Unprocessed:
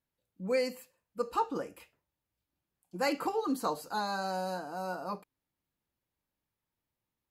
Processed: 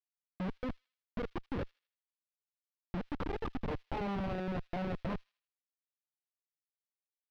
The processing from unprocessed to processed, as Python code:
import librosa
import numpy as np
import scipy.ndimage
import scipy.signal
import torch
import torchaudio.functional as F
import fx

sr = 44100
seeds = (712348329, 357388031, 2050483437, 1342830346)

y = fx.wiener(x, sr, points=25)
y = scipy.signal.sosfilt(scipy.signal.butter(4, 85.0, 'highpass', fs=sr, output='sos'), y)
y = fx.high_shelf(y, sr, hz=2300.0, db=-9.0)
y = fx.over_compress(y, sr, threshold_db=-37.0, ratio=-1.0)
y = fx.transient(y, sr, attack_db=10, sustain_db=-2)
y = fx.level_steps(y, sr, step_db=13)
y = fx.schmitt(y, sr, flips_db=-41.0)
y = fx.air_absorb(y, sr, metres=320.0)
y = fx.echo_wet_highpass(y, sr, ms=79, feedback_pct=37, hz=3900.0, wet_db=-14.0)
y = y * librosa.db_to_amplitude(10.5)